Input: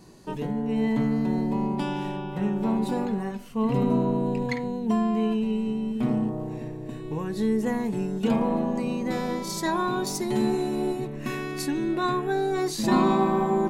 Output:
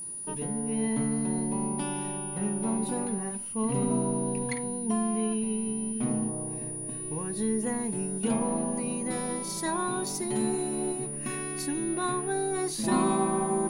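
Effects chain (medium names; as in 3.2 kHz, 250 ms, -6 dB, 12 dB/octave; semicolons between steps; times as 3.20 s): whistle 9.7 kHz -31 dBFS; trim -4.5 dB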